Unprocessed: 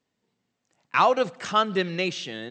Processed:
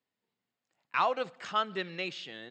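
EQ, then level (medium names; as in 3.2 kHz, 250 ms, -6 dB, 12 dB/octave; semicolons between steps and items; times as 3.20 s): distance through air 64 m; bass shelf 500 Hz -8.5 dB; band-stop 5.9 kHz, Q 7; -6.0 dB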